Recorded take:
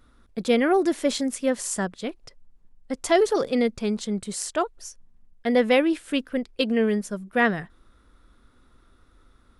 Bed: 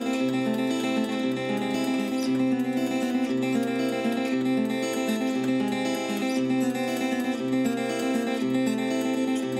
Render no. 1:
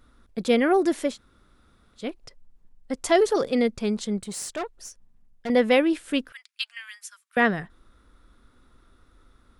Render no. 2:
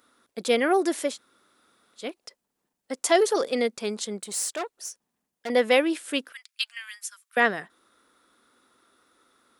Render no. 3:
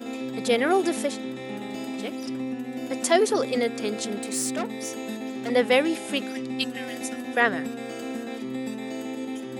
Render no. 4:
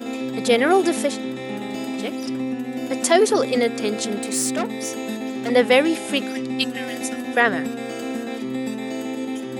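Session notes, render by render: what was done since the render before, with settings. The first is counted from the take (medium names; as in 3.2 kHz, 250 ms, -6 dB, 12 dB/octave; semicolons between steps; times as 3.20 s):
1.10–2.00 s: room tone, crossfade 0.16 s; 4.17–5.50 s: valve stage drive 26 dB, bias 0.35; 6.32–7.37 s: Bessel high-pass 2.1 kHz, order 8
high-pass 340 Hz 12 dB/octave; treble shelf 5.7 kHz +8 dB
add bed -7 dB
trim +5 dB; peak limiter -3 dBFS, peak gain reduction 2.5 dB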